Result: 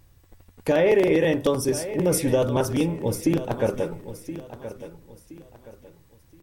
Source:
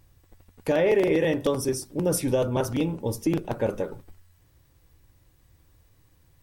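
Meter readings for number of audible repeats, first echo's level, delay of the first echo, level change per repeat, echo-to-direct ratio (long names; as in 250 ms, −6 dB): 3, −13.0 dB, 1,022 ms, −10.0 dB, −12.5 dB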